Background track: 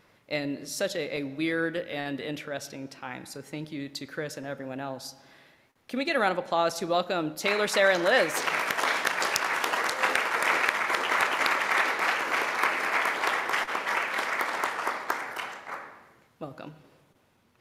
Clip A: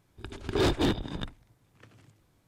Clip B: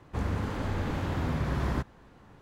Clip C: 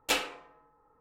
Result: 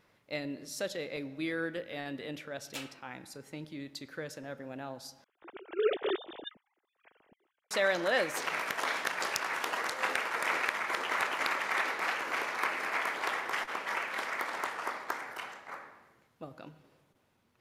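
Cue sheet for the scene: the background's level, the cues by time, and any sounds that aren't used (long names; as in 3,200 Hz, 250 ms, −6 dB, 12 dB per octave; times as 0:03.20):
background track −6.5 dB
0:02.65: mix in C −17 dB + tilt shelving filter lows −4.5 dB
0:05.24: overwrite with A −5 dB + three sine waves on the formant tracks
not used: B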